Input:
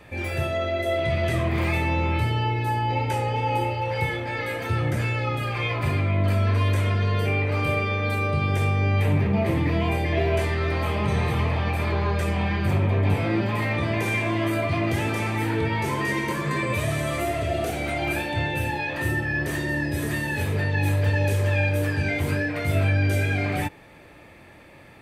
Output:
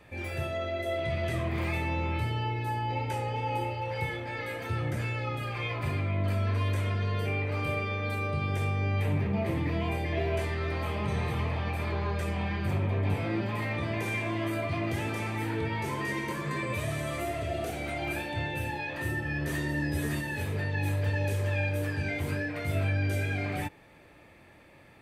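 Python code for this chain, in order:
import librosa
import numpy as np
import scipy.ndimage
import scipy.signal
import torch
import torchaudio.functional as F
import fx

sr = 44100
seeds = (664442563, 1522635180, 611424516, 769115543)

y = fx.doubler(x, sr, ms=13.0, db=-2.0, at=(19.24, 20.21))
y = y * librosa.db_to_amplitude(-7.0)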